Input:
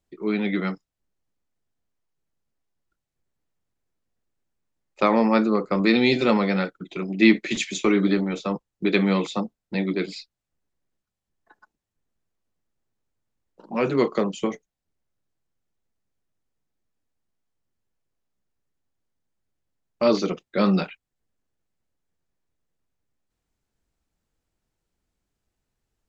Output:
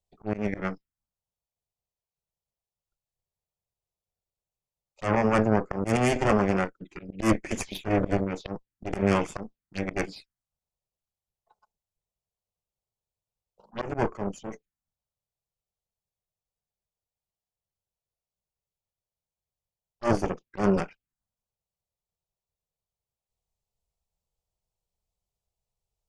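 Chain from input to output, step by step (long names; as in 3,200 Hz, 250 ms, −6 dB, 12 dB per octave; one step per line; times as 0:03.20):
0:09.04–0:10.10: dynamic equaliser 2,300 Hz, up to +7 dB, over −44 dBFS, Q 0.87
harmonic generator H 6 −8 dB, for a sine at −4.5 dBFS
phaser swept by the level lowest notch 280 Hz, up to 3,900 Hz, full sweep at −18 dBFS
volume swells 108 ms
level −5.5 dB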